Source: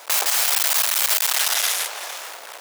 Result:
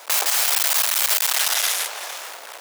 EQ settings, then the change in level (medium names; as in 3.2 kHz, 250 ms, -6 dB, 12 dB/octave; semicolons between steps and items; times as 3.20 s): high-pass 190 Hz 24 dB/octave; 0.0 dB